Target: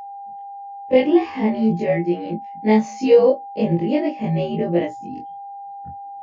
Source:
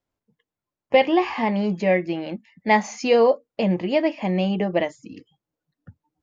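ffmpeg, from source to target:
-af "afftfilt=real='re':imag='-im':win_size=2048:overlap=0.75,lowshelf=f=550:t=q:w=1.5:g=8.5,aeval=exprs='val(0)+0.0251*sin(2*PI*800*n/s)':c=same"

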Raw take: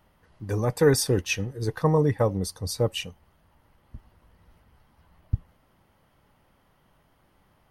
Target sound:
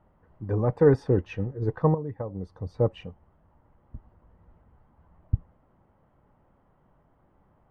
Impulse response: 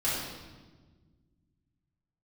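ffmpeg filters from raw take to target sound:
-filter_complex "[0:a]asettb=1/sr,asplit=3[s0][s1][s2];[s0]atrim=end=1.944[s3];[s1]atrim=start=1.94:end=2.74,asetpts=PTS-STARTPTS,afade=t=in:d=0.004:c=qsin,afade=t=out:st=0.796:d=0.004:c=qsin,acompressor=threshold=0.0316:ratio=12[s4];[s2]atrim=start=2.736[s5];[s3][s4]acrossfade=d=0.004:c1=hsin:c2=qsin[s6];[s6][s5]acrossfade=d=0.004:c1=qsin:c2=hsin,lowpass=1100,volume=1.12"

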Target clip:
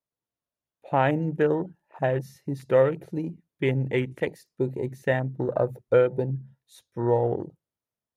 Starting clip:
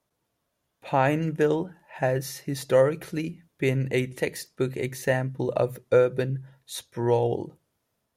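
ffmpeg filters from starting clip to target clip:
-af "afwtdn=0.0178"

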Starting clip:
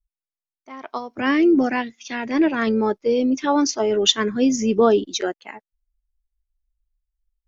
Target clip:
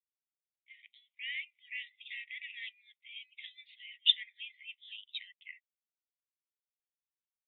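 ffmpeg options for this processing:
-af "asuperpass=centerf=2700:order=20:qfactor=1.5,volume=0.447"

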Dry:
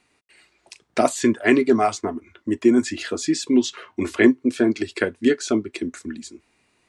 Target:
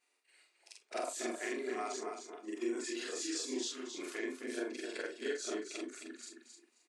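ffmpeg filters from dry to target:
-filter_complex "[0:a]afftfilt=real='re':imag='-im':win_size=4096:overlap=0.75,highpass=f=350:w=0.5412,highpass=f=350:w=1.3066,highshelf=f=4000:g=6.5,alimiter=limit=0.133:level=0:latency=1:release=235,flanger=delay=8.3:depth=1.3:regen=-67:speed=0.64:shape=sinusoidal,asplit=2[s0][s1];[s1]aecho=0:1:266|532|798:0.447|0.0849|0.0161[s2];[s0][s2]amix=inputs=2:normalize=0,volume=0.531"

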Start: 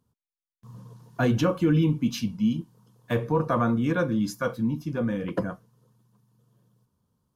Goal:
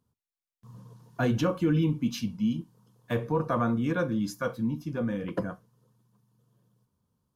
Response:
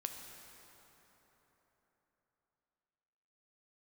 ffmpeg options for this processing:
-filter_complex "[0:a]asplit=2[s0][s1];[1:a]atrim=start_sample=2205,atrim=end_sample=3087[s2];[s1][s2]afir=irnorm=-1:irlink=0,volume=0.531[s3];[s0][s3]amix=inputs=2:normalize=0,volume=0.501"

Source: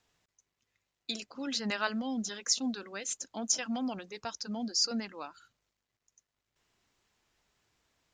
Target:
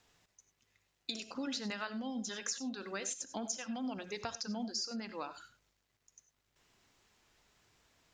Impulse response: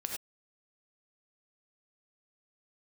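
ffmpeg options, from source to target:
-filter_complex "[0:a]acompressor=threshold=0.00891:ratio=10,asplit=2[s0][s1];[1:a]atrim=start_sample=2205[s2];[s1][s2]afir=irnorm=-1:irlink=0,volume=0.531[s3];[s0][s3]amix=inputs=2:normalize=0,volume=1.19"

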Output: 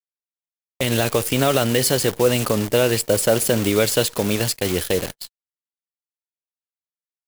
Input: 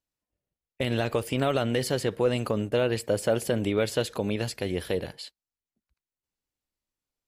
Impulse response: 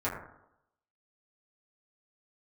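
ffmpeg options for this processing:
-af "acrusher=bits=7:dc=4:mix=0:aa=0.000001,dynaudnorm=f=470:g=3:m=2.24,agate=range=0.00562:threshold=0.0316:ratio=16:detection=peak,highshelf=f=4800:g=10"

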